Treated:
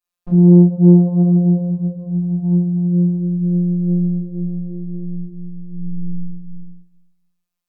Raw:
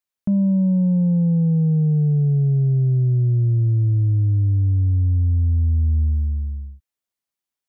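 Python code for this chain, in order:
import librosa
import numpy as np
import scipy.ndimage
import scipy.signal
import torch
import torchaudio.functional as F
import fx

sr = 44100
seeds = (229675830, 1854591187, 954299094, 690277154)

y = fx.low_shelf(x, sr, hz=110.0, db=-5.5)
y = fx.room_shoebox(y, sr, seeds[0], volume_m3=59.0, walls='mixed', distance_m=3.5)
y = fx.robotise(y, sr, hz=176.0)
y = fx.doppler_dist(y, sr, depth_ms=0.63)
y = y * librosa.db_to_amplitude(-8.5)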